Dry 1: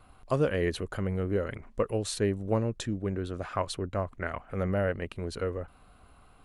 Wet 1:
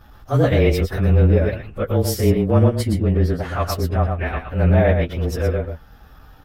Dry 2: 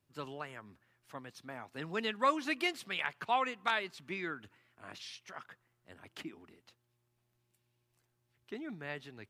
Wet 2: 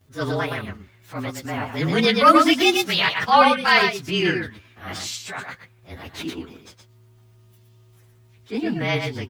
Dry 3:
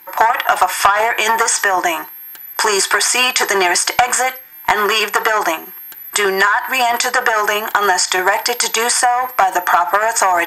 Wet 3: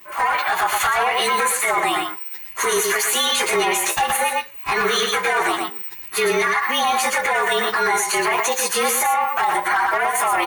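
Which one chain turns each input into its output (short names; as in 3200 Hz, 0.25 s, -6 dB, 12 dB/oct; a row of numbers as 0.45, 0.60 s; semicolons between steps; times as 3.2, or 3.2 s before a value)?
inharmonic rescaling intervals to 109%; on a send: echo 0.116 s -6.5 dB; on the sum: transient shaper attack -7 dB, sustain -3 dB; limiter -14 dBFS; bell 70 Hz +6 dB 2 oct; match loudness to -19 LUFS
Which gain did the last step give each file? +13.0, +21.5, +3.5 dB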